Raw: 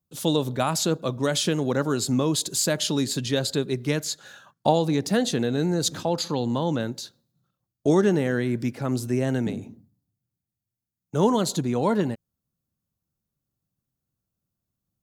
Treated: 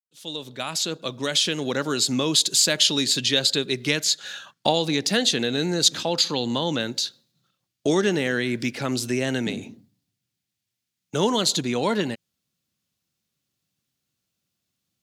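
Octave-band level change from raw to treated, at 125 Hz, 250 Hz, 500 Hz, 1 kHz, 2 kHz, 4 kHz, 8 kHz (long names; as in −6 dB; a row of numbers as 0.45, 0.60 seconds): −5.0, −2.0, −1.0, −1.5, +6.0, +9.0, +5.0 decibels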